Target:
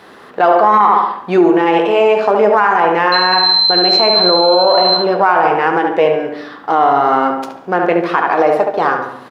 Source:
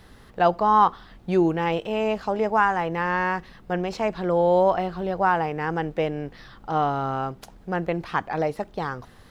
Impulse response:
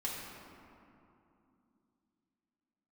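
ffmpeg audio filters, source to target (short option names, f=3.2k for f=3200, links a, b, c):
-filter_complex "[0:a]aeval=exprs='if(lt(val(0),0),0.708*val(0),val(0))':c=same,highpass=390,highshelf=f=3.3k:g=-12,asettb=1/sr,asplit=3[a][b][c];[a]atrim=end=3.124[d];[b]atrim=start=3.12:end=4.97,asetpts=PTS-STARTPTS,afade=t=in:d=0.004:c=qsin,afade=t=out:st=1.846:d=0.004:c=qsin,aeval=exprs='val(0)+0.0447*sin(2*PI*4100*n/s)':c=same[e];[c]atrim=start=4.966[f];[d][e]acrossfade=d=0.004:c1=hsin:c2=qsin[g];[g][f]acrossfade=d=0.004:c1=qsin:c2=hsin,flanger=delay=9.6:depth=2.7:regen=-59:speed=1.2:shape=sinusoidal,asplit=2[h][i];[i]adelay=71,lowpass=f=2.6k:p=1,volume=-6dB,asplit=2[j][k];[k]adelay=71,lowpass=f=2.6k:p=1,volume=0.49,asplit=2[l][m];[m]adelay=71,lowpass=f=2.6k:p=1,volume=0.49,asplit=2[n][o];[o]adelay=71,lowpass=f=2.6k:p=1,volume=0.49,asplit=2[p][q];[q]adelay=71,lowpass=f=2.6k:p=1,volume=0.49,asplit=2[r][s];[s]adelay=71,lowpass=f=2.6k:p=1,volume=0.49[t];[h][j][l][n][p][r][t]amix=inputs=7:normalize=0,asplit=2[u][v];[1:a]atrim=start_sample=2205,afade=t=out:st=0.36:d=0.01,atrim=end_sample=16317,asetrate=57330,aresample=44100[w];[v][w]afir=irnorm=-1:irlink=0,volume=-8.5dB[x];[u][x]amix=inputs=2:normalize=0,alimiter=level_in=21.5dB:limit=-1dB:release=50:level=0:latency=1,volume=-1dB"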